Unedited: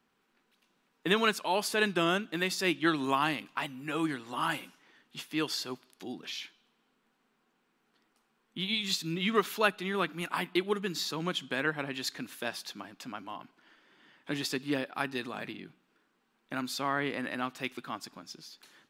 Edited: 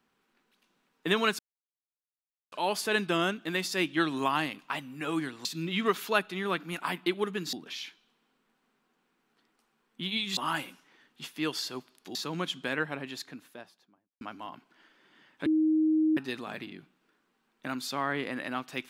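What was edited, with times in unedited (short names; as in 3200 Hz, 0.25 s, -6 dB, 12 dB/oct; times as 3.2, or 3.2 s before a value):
1.39 insert silence 1.13 s
4.32–6.1 swap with 8.94–11.02
11.56–13.08 studio fade out
14.33–15.04 bleep 313 Hz -21.5 dBFS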